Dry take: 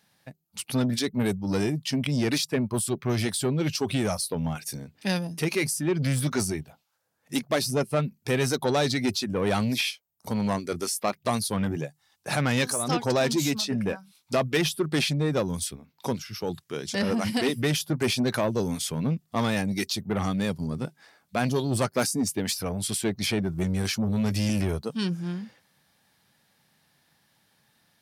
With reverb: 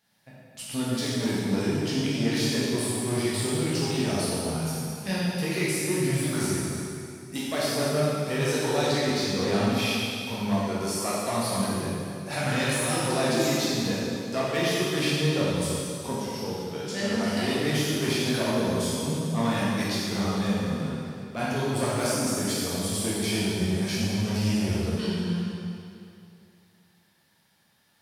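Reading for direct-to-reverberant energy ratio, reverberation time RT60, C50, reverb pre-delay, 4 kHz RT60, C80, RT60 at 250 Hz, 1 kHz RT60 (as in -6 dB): -8.0 dB, 2.5 s, -3.5 dB, 5 ms, 2.3 s, -1.5 dB, 2.4 s, 2.5 s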